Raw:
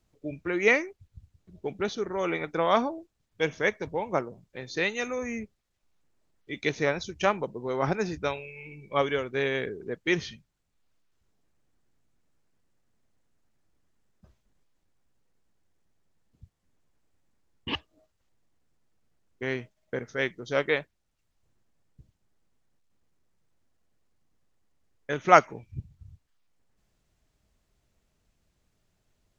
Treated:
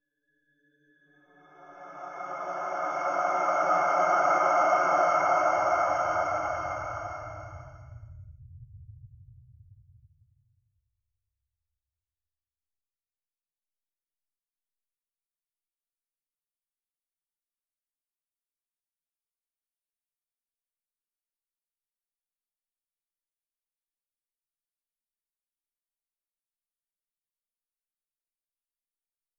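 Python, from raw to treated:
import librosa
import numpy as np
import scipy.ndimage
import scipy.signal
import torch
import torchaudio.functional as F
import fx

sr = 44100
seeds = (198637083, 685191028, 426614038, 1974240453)

y = fx.bin_expand(x, sr, power=3.0)
y = fx.paulstretch(y, sr, seeds[0], factor=6.7, window_s=1.0, from_s=24.65)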